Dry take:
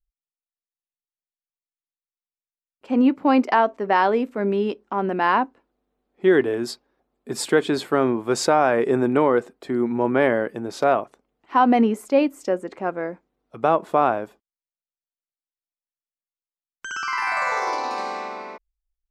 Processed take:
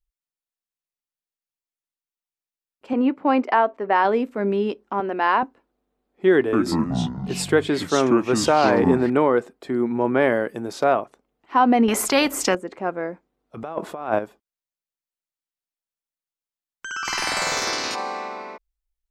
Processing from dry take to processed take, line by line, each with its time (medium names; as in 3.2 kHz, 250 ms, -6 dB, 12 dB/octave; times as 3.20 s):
2.93–4.05 s: tone controls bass -7 dB, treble -11 dB
5.00–5.43 s: band-pass 310–6400 Hz
6.34–9.10 s: ever faster or slower copies 188 ms, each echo -5 st, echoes 3
10.27–10.73 s: treble shelf 5.5 kHz +9 dB
11.88–12.55 s: spectrum-flattening compressor 2:1
13.57–14.19 s: compressor with a negative ratio -24 dBFS, ratio -0.5
17.04–17.94 s: spectral peaks clipped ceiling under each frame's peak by 27 dB